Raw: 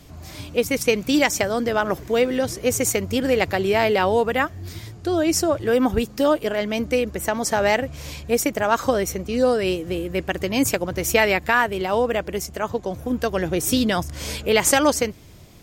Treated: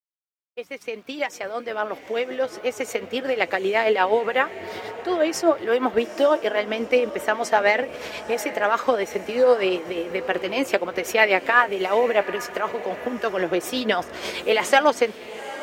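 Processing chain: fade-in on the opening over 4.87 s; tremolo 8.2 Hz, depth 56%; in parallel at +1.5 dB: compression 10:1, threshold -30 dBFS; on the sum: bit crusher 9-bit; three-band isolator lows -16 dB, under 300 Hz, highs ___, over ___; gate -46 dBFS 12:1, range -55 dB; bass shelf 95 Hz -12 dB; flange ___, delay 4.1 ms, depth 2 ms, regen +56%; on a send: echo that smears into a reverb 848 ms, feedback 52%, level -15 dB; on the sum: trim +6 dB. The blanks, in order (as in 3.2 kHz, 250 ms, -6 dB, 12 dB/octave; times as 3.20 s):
-15 dB, 3.8 kHz, 1 Hz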